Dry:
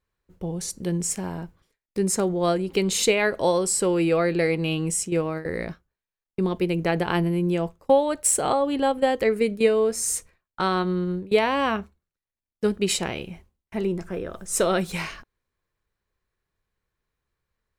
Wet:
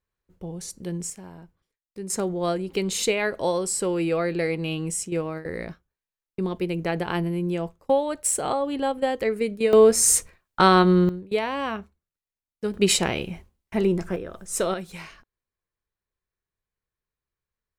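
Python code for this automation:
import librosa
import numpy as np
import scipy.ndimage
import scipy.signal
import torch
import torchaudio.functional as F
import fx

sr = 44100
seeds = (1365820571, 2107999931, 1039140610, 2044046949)

y = fx.gain(x, sr, db=fx.steps((0.0, -5.0), (1.1, -11.5), (2.1, -3.0), (9.73, 7.5), (11.09, -5.0), (12.74, 4.0), (14.16, -3.0), (14.74, -9.5)))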